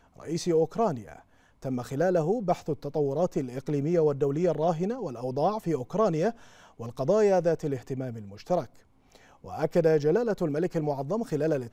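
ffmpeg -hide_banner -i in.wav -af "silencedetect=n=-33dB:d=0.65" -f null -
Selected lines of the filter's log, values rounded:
silence_start: 8.65
silence_end: 9.46 | silence_duration: 0.81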